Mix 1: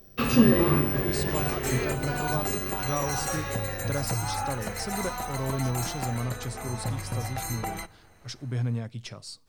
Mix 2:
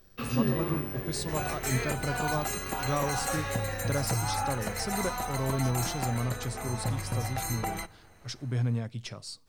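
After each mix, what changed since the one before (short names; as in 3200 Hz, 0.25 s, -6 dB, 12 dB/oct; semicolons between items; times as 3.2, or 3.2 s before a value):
first sound -9.5 dB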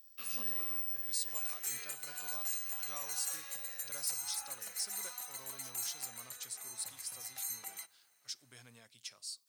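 second sound -3.5 dB; master: add differentiator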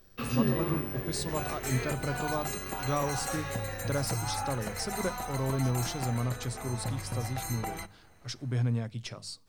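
speech: add notches 50/100/150/200 Hz; master: remove differentiator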